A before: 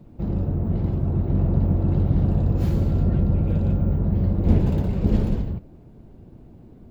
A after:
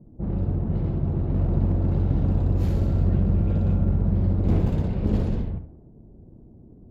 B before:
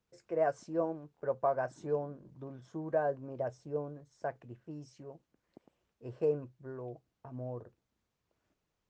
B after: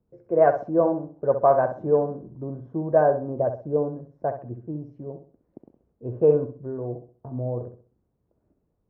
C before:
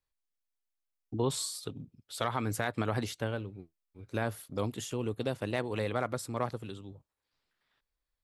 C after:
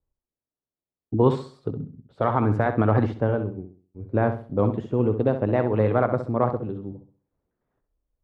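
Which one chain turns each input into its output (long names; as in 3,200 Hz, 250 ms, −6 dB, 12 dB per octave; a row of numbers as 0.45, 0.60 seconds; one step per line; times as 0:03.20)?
asymmetric clip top −18.5 dBFS
flutter between parallel walls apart 11.2 metres, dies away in 0.43 s
low-pass that shuts in the quiet parts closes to 500 Hz, open at −15 dBFS
loudness normalisation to −24 LKFS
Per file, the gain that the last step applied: −2.0, +12.5, +11.5 decibels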